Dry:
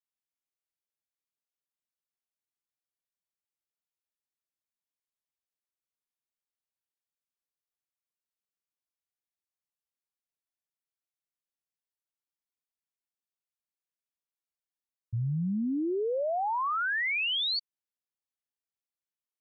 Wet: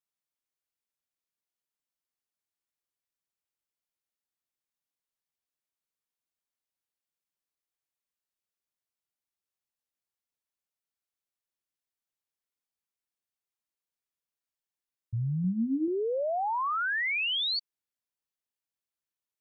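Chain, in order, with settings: 15.42–15.88 s: doubling 22 ms -6 dB

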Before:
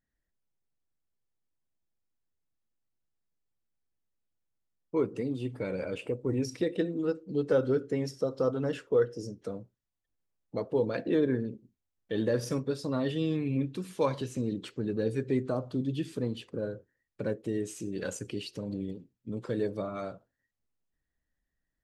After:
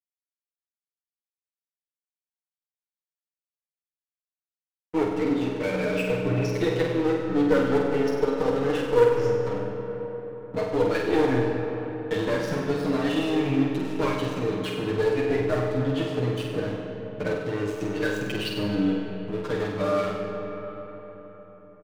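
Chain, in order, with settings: low-pass 2.7 kHz 12 dB/octave; tilt shelf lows -6 dB, about 1.4 kHz; comb 6.6 ms, depth 94%; in parallel at +2 dB: compression, threshold -37 dBFS, peak gain reduction 15.5 dB; on the sum: one-sided clip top -26.5 dBFS; flange 0.44 Hz, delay 8 ms, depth 4.2 ms, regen +2%; crossover distortion -45 dBFS; on a send: flutter echo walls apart 8.3 m, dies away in 0.6 s; on the sum: algorithmic reverb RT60 4.6 s, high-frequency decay 0.5×, pre-delay 50 ms, DRR 4 dB; trim +7.5 dB

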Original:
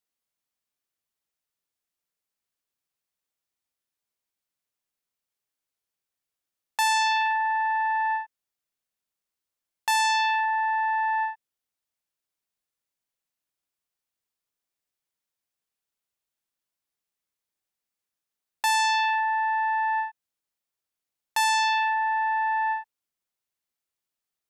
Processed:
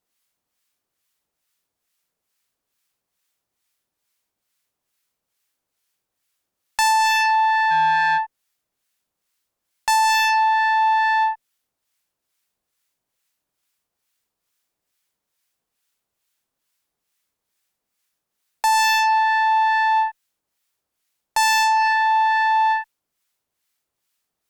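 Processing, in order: harmonic tremolo 2.3 Hz, depth 70%, crossover 1.1 kHz; 7.70–8.17 s: whistle 1.6 kHz -37 dBFS; Chebyshev shaper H 3 -13 dB, 5 -14 dB, 6 -36 dB, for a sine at -15.5 dBFS; in parallel at -10 dB: saturation -30.5 dBFS, distortion -13 dB; on the sum: trim +9 dB

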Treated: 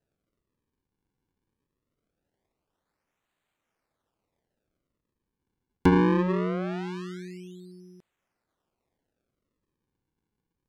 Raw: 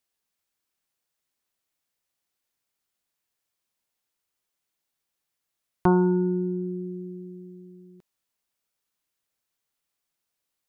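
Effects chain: decimation with a swept rate 39×, swing 160% 0.22 Hz; low-pass that closes with the level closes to 1.7 kHz, closed at -25.5 dBFS

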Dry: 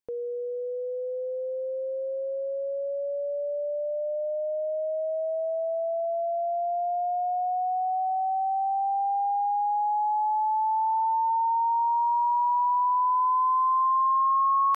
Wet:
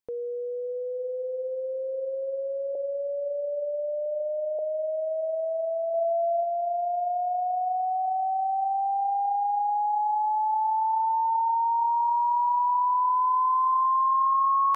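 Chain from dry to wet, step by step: 2.75–4.59 s: steep low-pass 890 Hz 48 dB/octave; 5.94–6.43 s: peaking EQ 440 Hz +7 dB 1.1 oct; echo that smears into a reverb 663 ms, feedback 41%, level -16 dB

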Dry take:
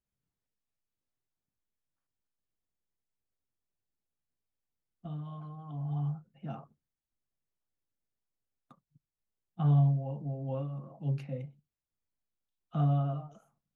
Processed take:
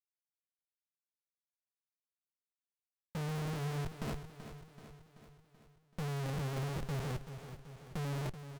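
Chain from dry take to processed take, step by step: gate -56 dBFS, range -37 dB; tempo 1.6×; saturation -30 dBFS, distortion -8 dB; formant shift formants -3 st; Schmitt trigger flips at -45 dBFS; feedback delay 382 ms, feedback 57%, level -11 dB; loudspeaker Doppler distortion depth 0.3 ms; trim +5.5 dB

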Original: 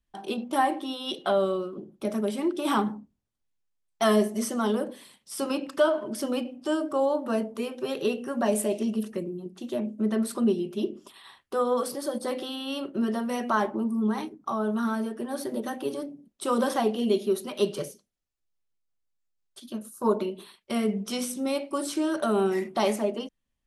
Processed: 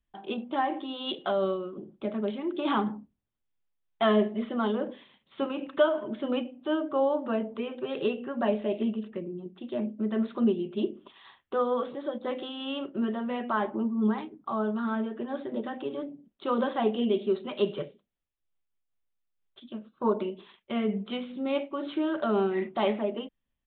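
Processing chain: resampled via 8 kHz; random flutter of the level, depth 60%; trim +1.5 dB

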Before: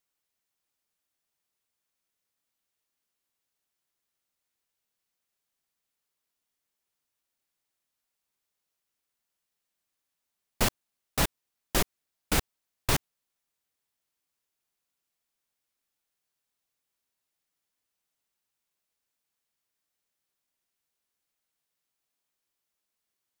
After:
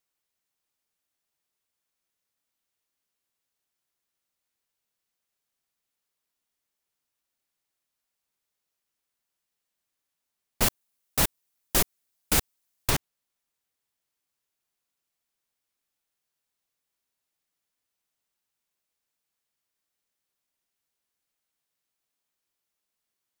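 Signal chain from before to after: 10.61–12.89 s: treble shelf 7.7 kHz -> 5 kHz +8.5 dB

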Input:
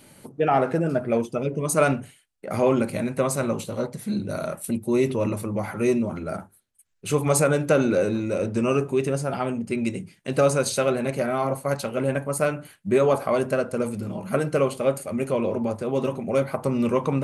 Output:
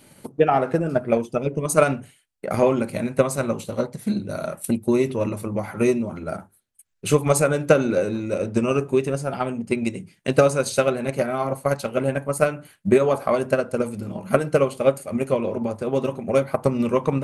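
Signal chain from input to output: transient shaper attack +8 dB, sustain -1 dB; trim -1 dB

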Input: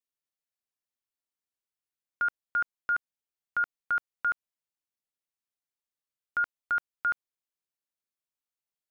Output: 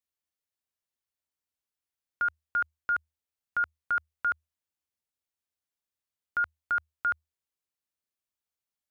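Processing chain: peaking EQ 78 Hz +13 dB 0.32 oct

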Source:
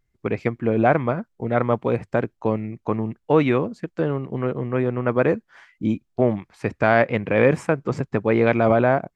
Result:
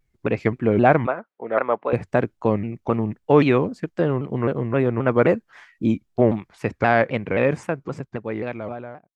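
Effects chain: fade out at the end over 3.02 s; 1.06–1.93 s: band-pass 480–2300 Hz; vibrato with a chosen wave saw down 3.8 Hz, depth 160 cents; trim +2 dB

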